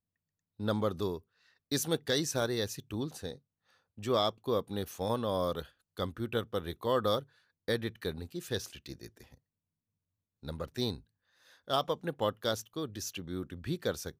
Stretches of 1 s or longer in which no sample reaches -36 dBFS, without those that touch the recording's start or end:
9.07–10.45

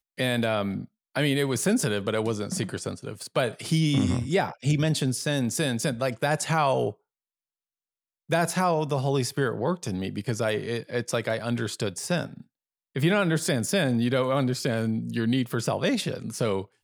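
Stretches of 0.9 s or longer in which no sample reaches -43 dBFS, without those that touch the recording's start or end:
6.92–8.29

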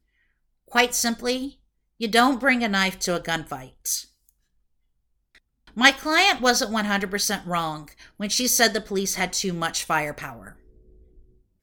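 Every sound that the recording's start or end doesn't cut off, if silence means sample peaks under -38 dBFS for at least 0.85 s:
5.69–10.52

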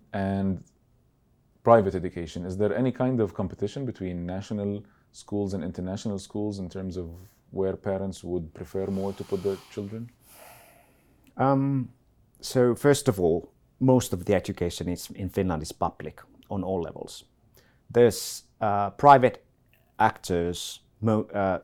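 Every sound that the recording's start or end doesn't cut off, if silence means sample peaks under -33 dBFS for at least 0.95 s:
1.65–10.04

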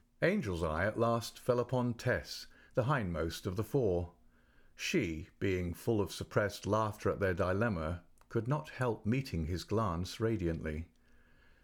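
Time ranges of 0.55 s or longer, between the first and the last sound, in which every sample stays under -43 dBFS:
4.06–4.79

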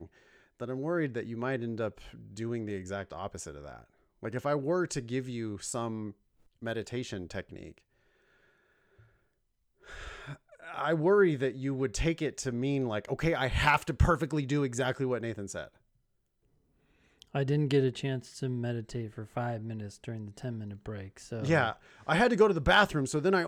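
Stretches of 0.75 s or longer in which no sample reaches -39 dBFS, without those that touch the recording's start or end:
7.78–9.9
15.65–17.22

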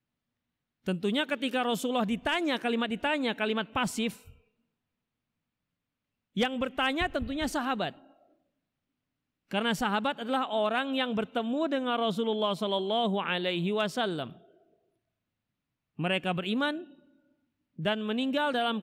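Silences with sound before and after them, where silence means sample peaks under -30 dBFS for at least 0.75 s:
4.09–6.37
7.89–9.51
14.24–15.99
16.76–17.79

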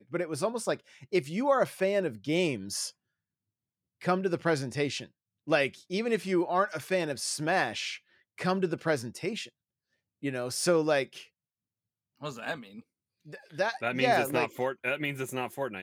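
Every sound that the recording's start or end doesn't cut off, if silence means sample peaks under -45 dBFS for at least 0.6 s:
4.01–9.48
10.23–11.24

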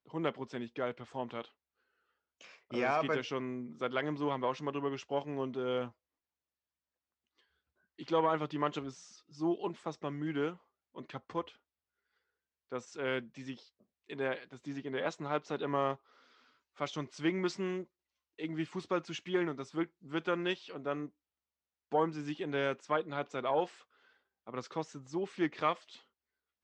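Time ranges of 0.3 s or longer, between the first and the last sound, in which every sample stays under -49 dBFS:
1.48–2.41
5.9–7.99
10.56–10.96
11.5–12.72
13.62–14.1
15.96–16.78
17.84–18.39
21.08–21.92
23.81–24.47

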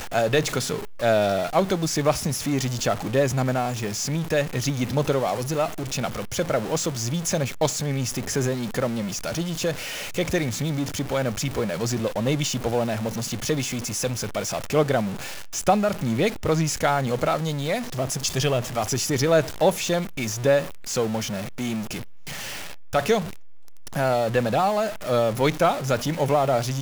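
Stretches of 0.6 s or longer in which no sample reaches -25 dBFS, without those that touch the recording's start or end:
21.97–22.94
23.21–23.96

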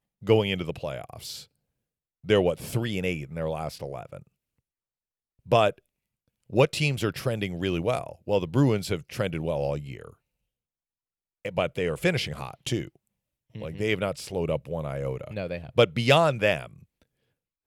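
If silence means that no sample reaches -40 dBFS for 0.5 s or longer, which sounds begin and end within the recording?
2.24–4.2
5.47–5.71
6.5–10.1
11.45–12.88
13.55–16.74

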